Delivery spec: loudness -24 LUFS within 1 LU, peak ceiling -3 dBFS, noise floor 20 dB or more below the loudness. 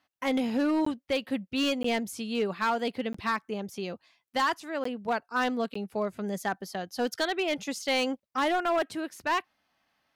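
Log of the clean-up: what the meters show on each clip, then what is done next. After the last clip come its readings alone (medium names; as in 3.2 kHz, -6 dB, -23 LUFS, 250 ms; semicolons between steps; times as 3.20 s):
clipped samples 1.3%; clipping level -21.0 dBFS; dropouts 5; longest dropout 14 ms; loudness -30.0 LUFS; peak level -21.0 dBFS; loudness target -24.0 LUFS
-> clip repair -21 dBFS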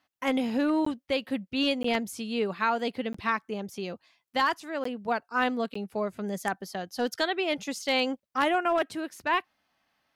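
clipped samples 0.0%; dropouts 5; longest dropout 14 ms
-> interpolate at 0.85/1.83/3.13/4.84/5.74 s, 14 ms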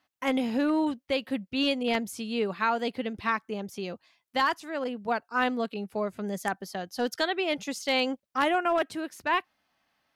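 dropouts 0; loudness -29.5 LUFS; peak level -12.0 dBFS; loudness target -24.0 LUFS
-> trim +5.5 dB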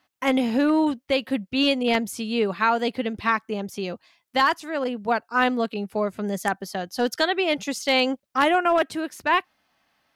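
loudness -24.0 LUFS; peak level -6.5 dBFS; noise floor -73 dBFS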